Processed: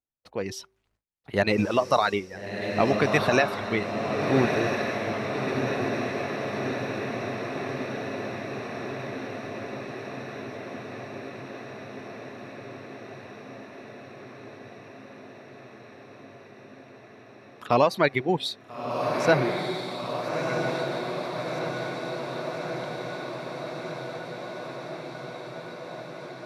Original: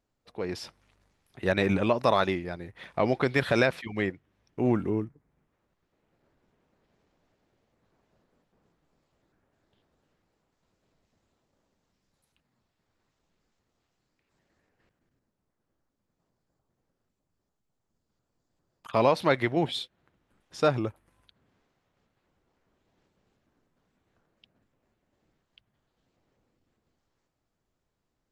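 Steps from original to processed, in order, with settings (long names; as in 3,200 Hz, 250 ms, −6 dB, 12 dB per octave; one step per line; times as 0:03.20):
hum removal 360.3 Hz, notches 3
noise gate with hold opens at −54 dBFS
reverb reduction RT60 1.8 s
feedback delay with all-pass diffusion 1,436 ms, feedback 75%, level −4 dB
speed change +7%
level +3 dB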